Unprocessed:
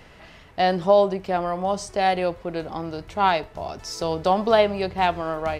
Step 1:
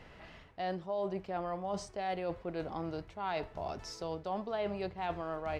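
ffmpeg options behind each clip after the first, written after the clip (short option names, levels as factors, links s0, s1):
-af "lowpass=f=3600:p=1,areverse,acompressor=threshold=0.0398:ratio=6,areverse,volume=0.531"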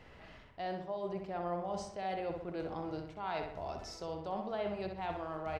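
-filter_complex "[0:a]asplit=2[s0][s1];[s1]adelay=63,lowpass=f=3500:p=1,volume=0.562,asplit=2[s2][s3];[s3]adelay=63,lowpass=f=3500:p=1,volume=0.53,asplit=2[s4][s5];[s5]adelay=63,lowpass=f=3500:p=1,volume=0.53,asplit=2[s6][s7];[s7]adelay=63,lowpass=f=3500:p=1,volume=0.53,asplit=2[s8][s9];[s9]adelay=63,lowpass=f=3500:p=1,volume=0.53,asplit=2[s10][s11];[s11]adelay=63,lowpass=f=3500:p=1,volume=0.53,asplit=2[s12][s13];[s13]adelay=63,lowpass=f=3500:p=1,volume=0.53[s14];[s0][s2][s4][s6][s8][s10][s12][s14]amix=inputs=8:normalize=0,volume=0.708"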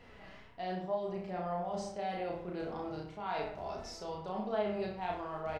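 -filter_complex "[0:a]flanger=delay=4.1:depth=1.2:regen=52:speed=1.8:shape=triangular,asplit=2[s0][s1];[s1]adelay=33,volume=0.794[s2];[s0][s2]amix=inputs=2:normalize=0,volume=1.41"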